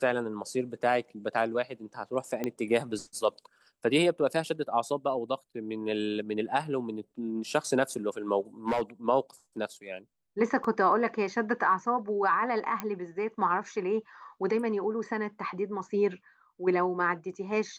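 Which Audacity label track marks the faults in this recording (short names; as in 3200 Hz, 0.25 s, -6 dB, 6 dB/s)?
2.440000	2.440000	pop -17 dBFS
8.680000	8.820000	clipped -23 dBFS
10.640000	10.640000	gap 4.1 ms
12.800000	12.800000	pop -16 dBFS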